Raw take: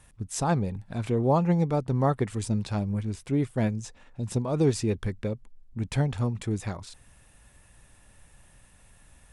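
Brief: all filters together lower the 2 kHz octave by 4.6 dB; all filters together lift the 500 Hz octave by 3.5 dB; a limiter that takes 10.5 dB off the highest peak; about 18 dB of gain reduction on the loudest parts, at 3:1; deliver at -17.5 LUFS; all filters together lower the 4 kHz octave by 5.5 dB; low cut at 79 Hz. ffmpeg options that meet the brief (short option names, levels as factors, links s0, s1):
-af "highpass=79,equalizer=f=500:t=o:g=4.5,equalizer=f=2000:t=o:g=-5,equalizer=f=4000:t=o:g=-6,acompressor=threshold=0.00794:ratio=3,volume=26.6,alimiter=limit=0.398:level=0:latency=1"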